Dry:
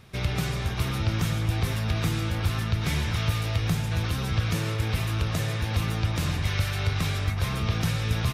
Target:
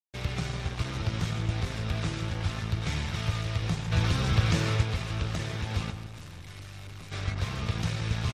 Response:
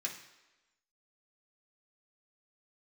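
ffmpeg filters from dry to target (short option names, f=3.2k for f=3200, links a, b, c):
-filter_complex "[0:a]lowpass=f=7.4k:w=0.5412,lowpass=f=7.4k:w=1.3066,asettb=1/sr,asplit=3[a][b][c];[a]atrim=end=3.924[d];[b]atrim=start=3.92:end=4.83,asetpts=PTS-STARTPTS,afade=t=in:d=0.004:c=qsin,afade=t=out:st=0.906:d=0.004:c=qsin,acontrast=32[e];[c]atrim=start=4.826[f];[d][e]acrossfade=d=0.004:c1=hsin:c2=qsin[g];[g][f]acrossfade=d=0.004:c1=qsin:c2=hsin,aeval=exprs='sgn(val(0))*max(abs(val(0))-0.0168,0)':c=same,asplit=3[h][i][j];[h]afade=t=out:st=5.9:d=0.02[k];[i]aeval=exprs='(tanh(79.4*val(0)+0.3)-tanh(0.3))/79.4':c=same,afade=t=in:st=5.9:d=0.02,afade=t=out:st=7.11:d=0.02[l];[j]afade=t=in:st=7.11:d=0.02[m];[k][l][m]amix=inputs=3:normalize=0,aeval=exprs='sgn(val(0))*max(abs(val(0))-0.002,0)':c=same,asplit=2[n][o];[o]adelay=163,lowpass=f=2.1k:p=1,volume=-10.5dB,asplit=2[p][q];[q]adelay=163,lowpass=f=2.1k:p=1,volume=0.16[r];[p][r]amix=inputs=2:normalize=0[s];[n][s]amix=inputs=2:normalize=0,volume=-2dB" -ar 44100 -c:a libmp3lame -b:a 56k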